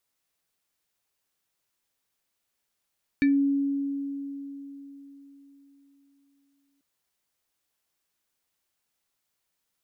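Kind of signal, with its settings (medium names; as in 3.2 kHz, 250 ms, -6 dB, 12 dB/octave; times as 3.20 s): FM tone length 3.59 s, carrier 279 Hz, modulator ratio 7.3, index 0.67, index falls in 0.19 s exponential, decay 4.01 s, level -17 dB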